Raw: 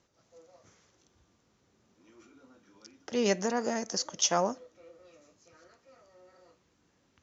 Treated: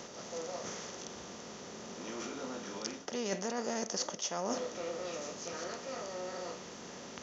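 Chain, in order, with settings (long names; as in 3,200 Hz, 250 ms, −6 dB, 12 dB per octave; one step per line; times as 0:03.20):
compressor on every frequency bin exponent 0.6
reversed playback
downward compressor 20 to 1, threshold −35 dBFS, peak gain reduction 16 dB
reversed playback
level +3.5 dB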